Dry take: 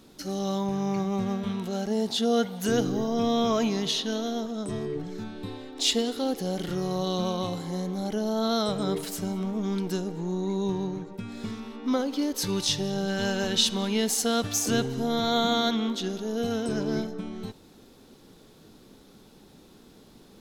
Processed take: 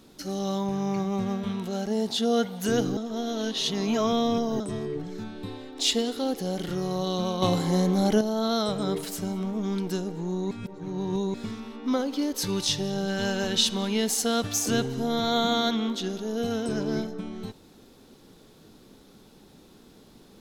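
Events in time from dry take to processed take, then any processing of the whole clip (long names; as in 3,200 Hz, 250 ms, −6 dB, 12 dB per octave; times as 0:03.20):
0:02.97–0:04.60: reverse
0:07.42–0:08.21: clip gain +8 dB
0:10.51–0:11.34: reverse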